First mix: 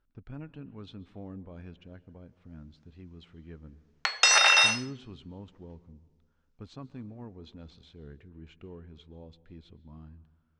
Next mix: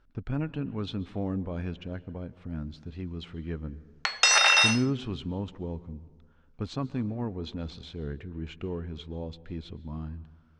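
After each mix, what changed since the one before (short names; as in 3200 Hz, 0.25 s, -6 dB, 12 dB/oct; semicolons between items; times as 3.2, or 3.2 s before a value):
speech +11.5 dB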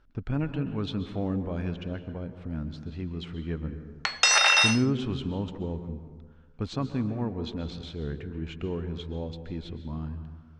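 speech: send +10.5 dB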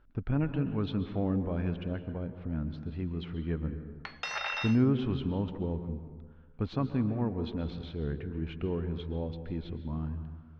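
background -10.5 dB; master: add air absorption 250 m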